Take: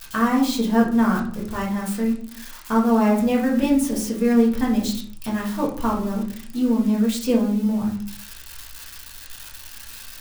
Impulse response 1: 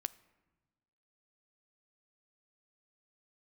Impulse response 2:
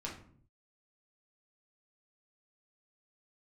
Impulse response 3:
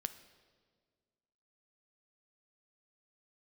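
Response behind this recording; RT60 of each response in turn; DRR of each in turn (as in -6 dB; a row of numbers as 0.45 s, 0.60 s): 2; 1.2 s, 0.55 s, 1.7 s; 15.5 dB, -4.0 dB, 10.5 dB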